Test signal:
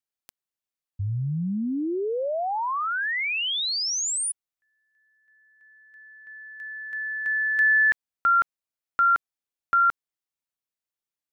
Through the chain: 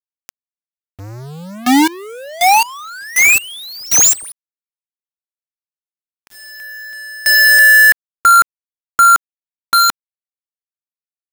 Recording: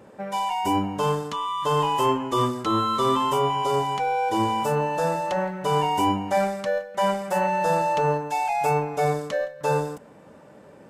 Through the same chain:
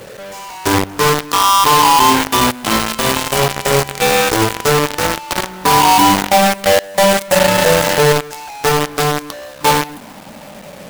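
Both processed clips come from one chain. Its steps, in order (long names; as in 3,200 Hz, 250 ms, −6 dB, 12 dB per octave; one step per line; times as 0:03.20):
rippled gain that drifts along the octave scale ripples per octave 0.53, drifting −0.26 Hz, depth 14 dB
in parallel at +2.5 dB: brickwall limiter −16 dBFS
on the sum: log-companded quantiser 2 bits
level −5 dB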